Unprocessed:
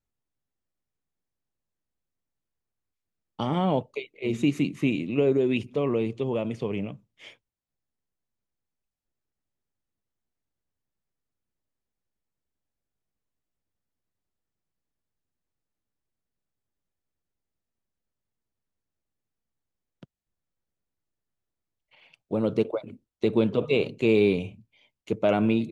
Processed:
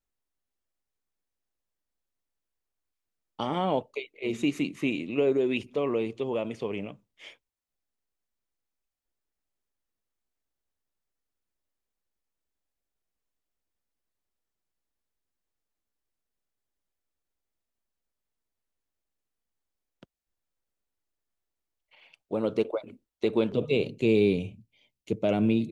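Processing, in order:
parametric band 130 Hz −9.5 dB 1.7 octaves, from 0:23.52 1,200 Hz

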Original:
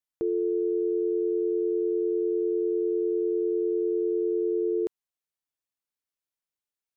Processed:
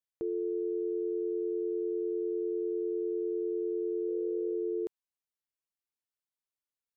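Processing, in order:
0:04.07–0:04.54: steady tone 490 Hz −39 dBFS
level −6.5 dB

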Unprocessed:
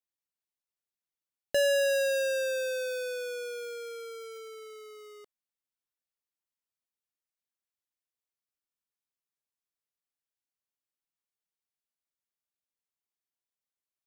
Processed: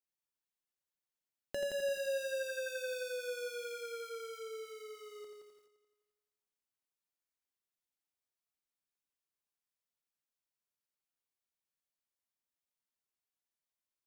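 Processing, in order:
downward compressor 10 to 1, threshold −36 dBFS, peak gain reduction 11 dB
echo machine with several playback heads 86 ms, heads first and second, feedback 49%, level −8 dB
on a send at −13 dB: convolution reverb RT60 0.70 s, pre-delay 3 ms
on the sum: feedback echo at a low word length 81 ms, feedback 55%, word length 10 bits, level −11 dB
level −4 dB

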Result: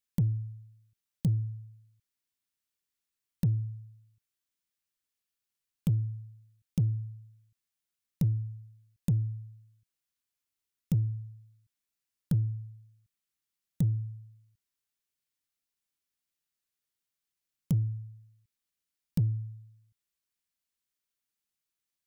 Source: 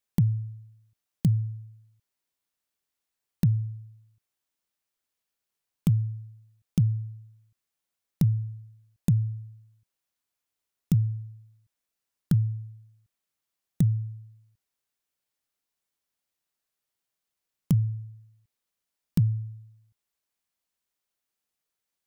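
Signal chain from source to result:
parametric band 680 Hz −8.5 dB 1.6 octaves
in parallel at −3.5 dB: soft clipping −22 dBFS, distortion −12 dB
on the sum: level −7 dB

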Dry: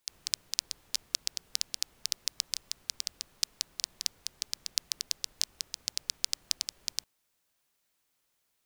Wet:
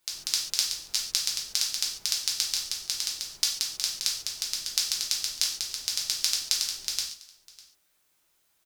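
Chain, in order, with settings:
single-tap delay 601 ms −21 dB
convolution reverb, pre-delay 3 ms, DRR −3 dB
level +2 dB

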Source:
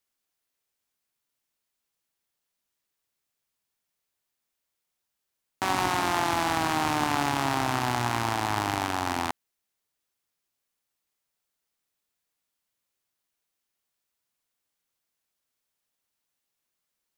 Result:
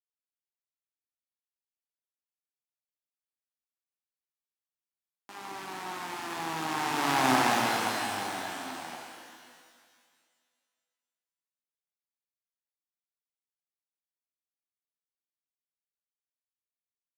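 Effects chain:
source passing by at 0:07.29, 20 m/s, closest 4.6 metres
high-pass filter 150 Hz 24 dB per octave
reverb with rising layers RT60 2 s, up +12 semitones, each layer −8 dB, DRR −1.5 dB

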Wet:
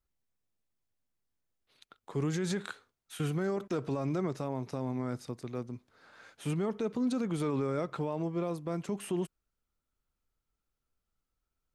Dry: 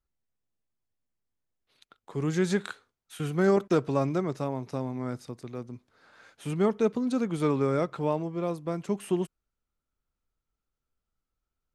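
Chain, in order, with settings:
brickwall limiter −24 dBFS, peak gain reduction 11.5 dB

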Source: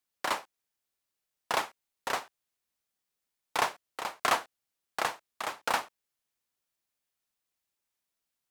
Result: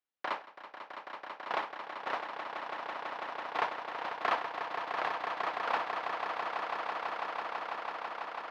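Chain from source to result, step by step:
high-pass filter 330 Hz 6 dB per octave
high-frequency loss of the air 310 metres
echo that builds up and dies away 165 ms, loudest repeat 8, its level −8.5 dB
level −2 dB

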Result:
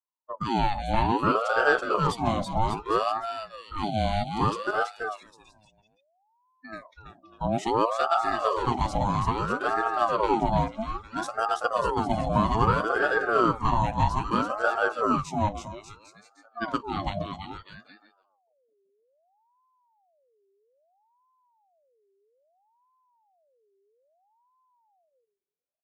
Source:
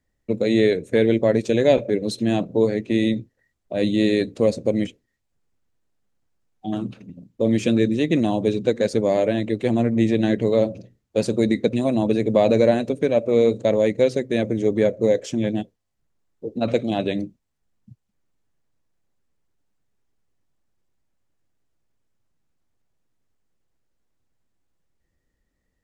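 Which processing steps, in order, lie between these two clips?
bouncing-ball delay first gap 330 ms, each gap 0.8×, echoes 5
noise reduction from a noise print of the clip's start 22 dB
ring modulator whose carrier an LFO sweeps 710 Hz, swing 45%, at 0.61 Hz
level −4 dB

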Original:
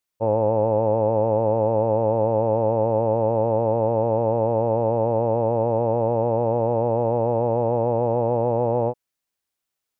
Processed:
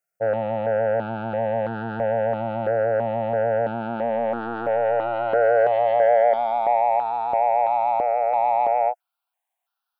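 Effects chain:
high-pass filter sweep 170 Hz → 860 Hz, 0:03.58–0:06.86
soft clipping −17 dBFS, distortion −12 dB
hollow resonant body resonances 700/1,400 Hz, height 12 dB, ringing for 25 ms
step-sequenced phaser 3 Hz 990–2,100 Hz

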